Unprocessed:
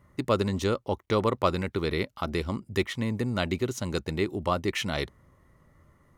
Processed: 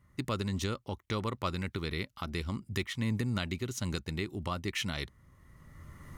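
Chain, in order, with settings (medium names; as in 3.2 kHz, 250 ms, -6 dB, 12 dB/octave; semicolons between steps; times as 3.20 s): recorder AGC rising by 17 dB/s; peaking EQ 550 Hz -9.5 dB 2 oct; trim -4 dB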